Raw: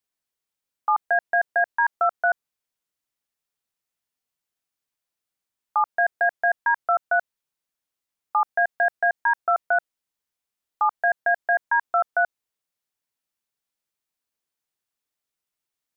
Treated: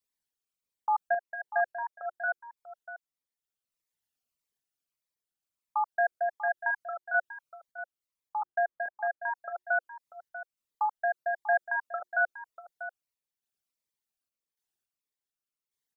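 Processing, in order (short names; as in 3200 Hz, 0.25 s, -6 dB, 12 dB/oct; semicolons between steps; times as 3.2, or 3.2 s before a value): formant sharpening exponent 2; 8.42–9.22 steep low-pass 1800 Hz; notches 60/120/180/240/300/360 Hz; random-step tremolo 3.5 Hz, depth 55%; outdoor echo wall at 110 m, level -12 dB; cascading phaser falling 1.6 Hz; gain -2 dB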